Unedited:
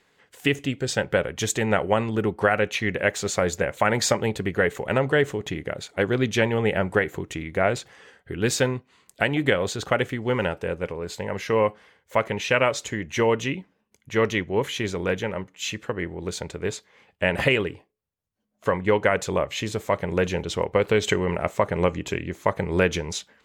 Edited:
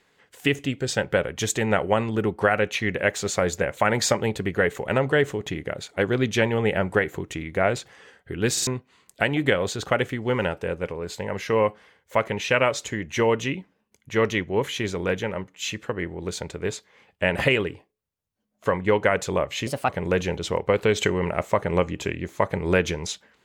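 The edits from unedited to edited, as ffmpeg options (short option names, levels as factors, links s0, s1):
-filter_complex "[0:a]asplit=6[s0][s1][s2][s3][s4][s5];[s0]atrim=end=8.572[s6];[s1]atrim=start=8.518:end=8.572[s7];[s2]atrim=start=8.518:end=8.572[s8];[s3]atrim=start=8.668:end=19.674[s9];[s4]atrim=start=19.67:end=19.95,asetpts=PTS-STARTPTS,asetrate=56448,aresample=44100[s10];[s5]atrim=start=19.946[s11];[s6][s7]acrossfade=d=0.004:c1=hsin:c2=hsin[s12];[s12][s8]acrossfade=d=0.004:c1=hsin:c2=hsin[s13];[s13][s9]acrossfade=d=0.004:c1=hsin:c2=hsin[s14];[s14][s10]acrossfade=d=0.004:c1=hsin:c2=hsin[s15];[s15][s11]acrossfade=d=0.004:c1=hsin:c2=hsin"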